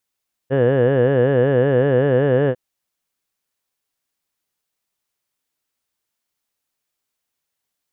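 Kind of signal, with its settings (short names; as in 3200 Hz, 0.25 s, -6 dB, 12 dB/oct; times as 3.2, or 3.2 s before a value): formant vowel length 2.05 s, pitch 128 Hz, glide +1 st, vibrato depth 1.4 st, F1 490 Hz, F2 1700 Hz, F3 2900 Hz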